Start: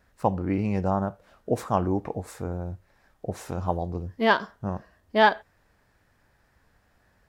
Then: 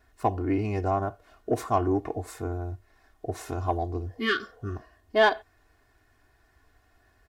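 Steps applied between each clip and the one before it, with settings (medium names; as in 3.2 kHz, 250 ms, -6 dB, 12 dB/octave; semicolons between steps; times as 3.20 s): spectral replace 4.12–4.74 s, 450–1100 Hz before; comb 2.8 ms, depth 85%; in parallel at -5 dB: saturation -16 dBFS, distortion -12 dB; on the sum: trim -5.5 dB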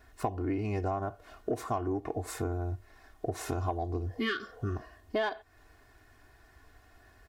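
compression 6:1, threshold -34 dBFS, peak gain reduction 17 dB; trim +4.5 dB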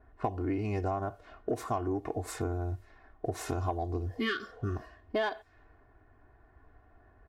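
level-controlled noise filter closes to 950 Hz, open at -33 dBFS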